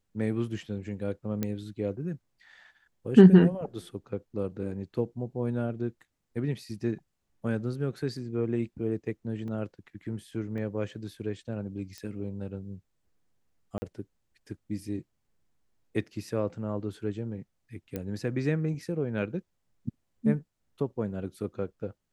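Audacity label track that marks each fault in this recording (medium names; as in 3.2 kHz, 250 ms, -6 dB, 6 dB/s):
1.430000	1.430000	pop -16 dBFS
9.480000	9.480000	dropout 2.6 ms
10.580000	10.580000	dropout 2.7 ms
11.980000	11.980000	pop -26 dBFS
13.780000	13.820000	dropout 40 ms
17.960000	17.960000	pop -20 dBFS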